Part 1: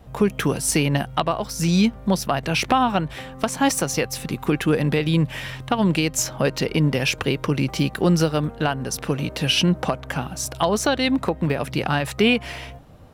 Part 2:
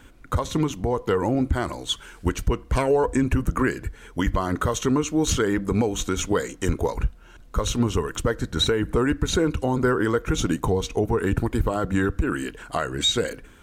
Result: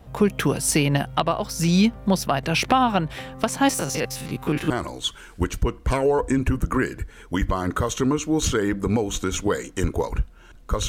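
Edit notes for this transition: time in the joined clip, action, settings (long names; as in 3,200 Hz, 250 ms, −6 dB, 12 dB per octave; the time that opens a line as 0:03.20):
part 1
0:03.69–0:04.70: spectrum averaged block by block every 50 ms
0:04.70: continue with part 2 from 0:01.55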